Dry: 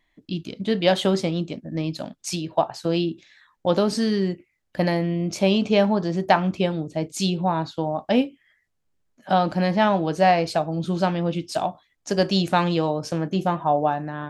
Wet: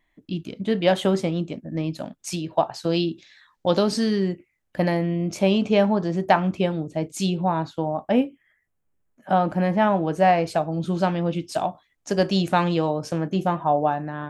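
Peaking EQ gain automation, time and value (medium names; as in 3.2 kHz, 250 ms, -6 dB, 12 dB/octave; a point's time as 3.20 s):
peaking EQ 4.5 kHz 1 oct
2.16 s -7 dB
3.00 s +4 dB
3.79 s +4 dB
4.33 s -5.5 dB
7.64 s -5.5 dB
8.11 s -14.5 dB
9.91 s -14.5 dB
10.72 s -4 dB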